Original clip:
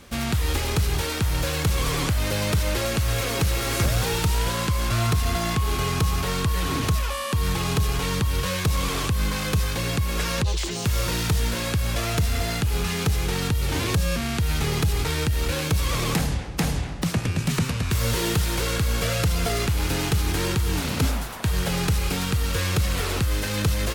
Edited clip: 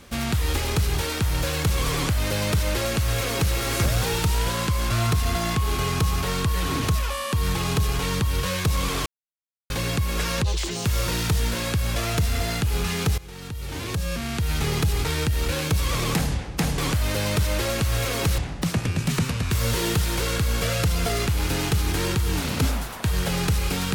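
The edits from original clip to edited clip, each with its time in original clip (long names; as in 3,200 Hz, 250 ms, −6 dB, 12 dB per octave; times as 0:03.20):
0:01.94–0:03.54: duplicate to 0:16.78
0:09.06–0:09.70: silence
0:13.18–0:14.67: fade in, from −19.5 dB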